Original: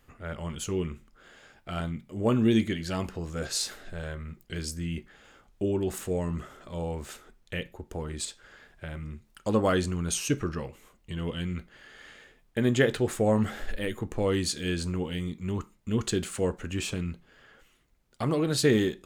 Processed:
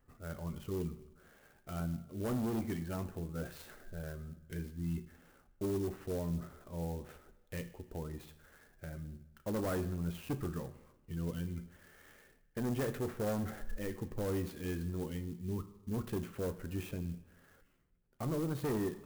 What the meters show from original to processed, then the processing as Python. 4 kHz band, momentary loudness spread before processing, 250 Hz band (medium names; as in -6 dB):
-18.5 dB, 15 LU, -9.0 dB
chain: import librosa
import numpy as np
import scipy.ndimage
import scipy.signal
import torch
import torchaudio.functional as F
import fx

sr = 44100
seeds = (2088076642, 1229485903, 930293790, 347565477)

y = fx.spec_gate(x, sr, threshold_db=-25, keep='strong')
y = np.clip(y, -10.0 ** (-24.5 / 20.0), 10.0 ** (-24.5 / 20.0))
y = fx.air_absorb(y, sr, metres=390.0)
y = fx.rev_double_slope(y, sr, seeds[0], early_s=0.83, late_s=2.3, knee_db=-18, drr_db=10.5)
y = fx.clock_jitter(y, sr, seeds[1], jitter_ms=0.05)
y = y * 10.0 ** (-6.5 / 20.0)